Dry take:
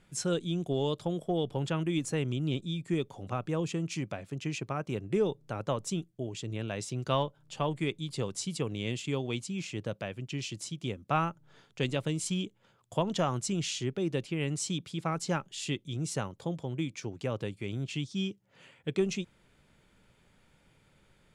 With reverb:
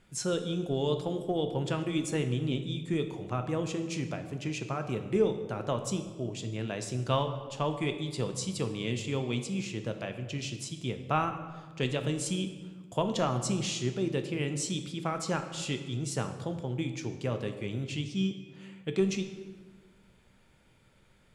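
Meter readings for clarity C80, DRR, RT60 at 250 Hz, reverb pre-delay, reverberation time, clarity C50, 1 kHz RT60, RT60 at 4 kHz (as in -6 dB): 10.5 dB, 6.5 dB, 1.7 s, 3 ms, 1.4 s, 9.0 dB, 1.3 s, 1.0 s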